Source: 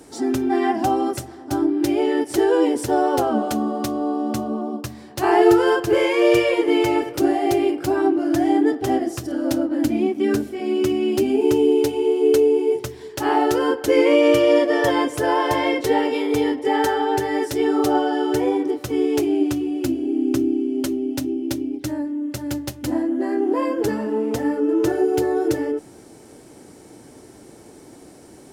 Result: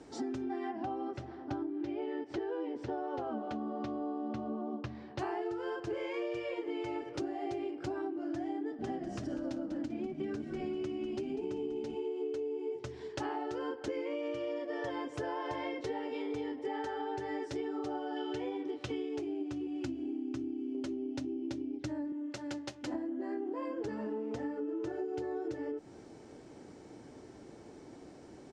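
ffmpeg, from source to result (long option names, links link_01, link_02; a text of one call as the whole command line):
ffmpeg -i in.wav -filter_complex "[0:a]asettb=1/sr,asplit=3[link_01][link_02][link_03];[link_01]atrim=end=0.714[link_04];[link_02]atrim=start=0.71:end=5.19,asetpts=PTS-STARTPTS,afade=type=in:duration=0.004:curve=qsin,afade=type=out:start_time=4.476:duration=0.004:curve=qsin,lowpass=3600[link_05];[link_03]atrim=start=5.186[link_06];[link_04][link_05]acrossfade=duration=0.004:curve1=hsin:curve2=qsin[link_07];[link_07][link_06]acrossfade=duration=0.004:curve1=qsin:curve2=hsin,asplit=3[link_08][link_09][link_10];[link_08]afade=type=out:start_time=8.78:duration=0.02[link_11];[link_09]asplit=5[link_12][link_13][link_14][link_15][link_16];[link_13]adelay=195,afreqshift=-64,volume=-11dB[link_17];[link_14]adelay=390,afreqshift=-128,volume=-19dB[link_18];[link_15]adelay=585,afreqshift=-192,volume=-26.9dB[link_19];[link_16]adelay=780,afreqshift=-256,volume=-34.9dB[link_20];[link_12][link_17][link_18][link_19][link_20]amix=inputs=5:normalize=0,afade=type=in:start_time=8.78:duration=0.02,afade=type=out:start_time=11.94:duration=0.02[link_21];[link_10]afade=type=in:start_time=11.94:duration=0.02[link_22];[link_11][link_21][link_22]amix=inputs=3:normalize=0,asettb=1/sr,asplit=3[link_23][link_24][link_25];[link_23]atrim=end=18.164[link_26];[link_24]atrim=start=18.16:end=19.09,asetpts=PTS-STARTPTS,afade=type=in:duration=0.004:curve=qsin,afade=type=out:start_time=0.926:duration=0.004:curve=qsin,equalizer=frequency=3100:width=1.2:gain=8.5[link_27];[link_25]atrim=start=19.086[link_28];[link_26][link_27]acrossfade=duration=0.004:curve1=hsin:curve2=qsin[link_29];[link_29][link_28]acrossfade=duration=0.004:curve1=qsin:curve2=hsin,asettb=1/sr,asplit=3[link_30][link_31][link_32];[link_30]atrim=end=19.674[link_33];[link_31]atrim=start=19.67:end=20.75,asetpts=PTS-STARTPTS,afade=type=in:duration=0.004:curve=qsin,afade=type=out:start_time=1.076:duration=0.004:curve=qsin,equalizer=frequency=460:width_type=o:width=0.77:gain=-9[link_34];[link_32]atrim=start=20.746[link_35];[link_33][link_34]acrossfade=duration=0.004:curve1=hsin:curve2=qsin[link_36];[link_36][link_35]acrossfade=duration=0.004:curve1=qsin:curve2=hsin,asettb=1/sr,asplit=3[link_37][link_38][link_39];[link_37]atrim=end=22.124[link_40];[link_38]atrim=start=22.12:end=22.94,asetpts=PTS-STARTPTS,afade=type=in:duration=0.004:curve=qsin,afade=type=out:start_time=0.816:duration=0.004:curve=qsin,highpass=frequency=490:poles=1[link_41];[link_39]atrim=start=22.936[link_42];[link_40][link_41]acrossfade=duration=0.004:curve1=hsin:curve2=qsin[link_43];[link_43][link_42]acrossfade=duration=0.004:curve1=qsin:curve2=hsin,lowpass=frequency=7200:width=0.5412,lowpass=frequency=7200:width=1.3066,highshelf=frequency=4500:gain=-7,acompressor=threshold=-27dB:ratio=12,volume=-7dB" out.wav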